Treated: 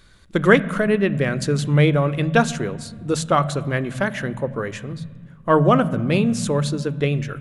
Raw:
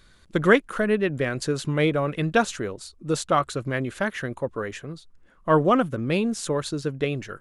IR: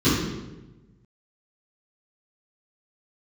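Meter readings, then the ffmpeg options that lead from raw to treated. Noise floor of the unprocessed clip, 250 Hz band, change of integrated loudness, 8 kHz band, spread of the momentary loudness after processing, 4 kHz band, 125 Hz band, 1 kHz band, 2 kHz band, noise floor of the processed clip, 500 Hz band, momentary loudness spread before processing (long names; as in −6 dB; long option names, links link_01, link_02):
−56 dBFS, +5.0 dB, +4.5 dB, +3.0 dB, 12 LU, +3.0 dB, +8.5 dB, +3.0 dB, +3.5 dB, −47 dBFS, +3.0 dB, 13 LU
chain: -filter_complex "[0:a]asplit=2[link_01][link_02];[1:a]atrim=start_sample=2205,asetrate=24255,aresample=44100[link_03];[link_02][link_03]afir=irnorm=-1:irlink=0,volume=-35.5dB[link_04];[link_01][link_04]amix=inputs=2:normalize=0,volume=3dB"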